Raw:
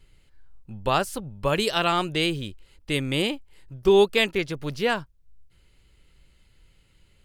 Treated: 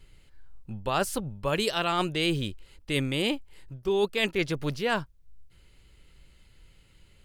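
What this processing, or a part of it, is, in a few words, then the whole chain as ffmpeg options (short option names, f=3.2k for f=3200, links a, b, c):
compression on the reversed sound: -af "areverse,acompressor=threshold=-24dB:ratio=12,areverse,volume=2dB"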